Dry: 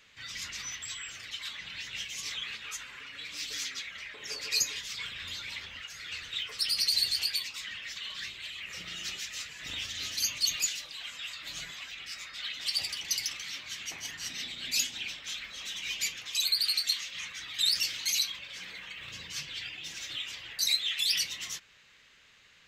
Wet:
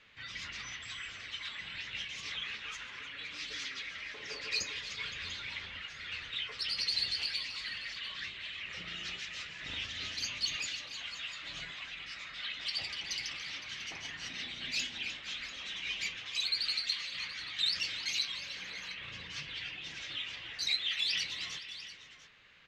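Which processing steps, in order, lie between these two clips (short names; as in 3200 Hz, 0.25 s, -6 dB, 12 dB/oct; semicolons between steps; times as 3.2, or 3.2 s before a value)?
LPF 3500 Hz 12 dB/oct; on a send: tapped delay 0.303/0.515/0.693 s -14/-17/-14 dB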